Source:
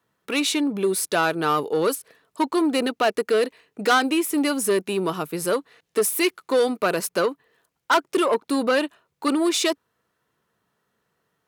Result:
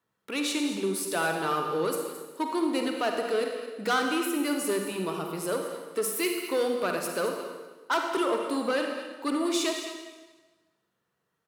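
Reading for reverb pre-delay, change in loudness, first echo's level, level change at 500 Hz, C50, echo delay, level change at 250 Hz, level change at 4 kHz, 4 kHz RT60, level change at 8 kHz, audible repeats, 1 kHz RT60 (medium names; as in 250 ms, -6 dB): 37 ms, -6.0 dB, -13.0 dB, -6.0 dB, 3.0 dB, 219 ms, -6.0 dB, -6.0 dB, 1.2 s, -6.0 dB, 1, 1.3 s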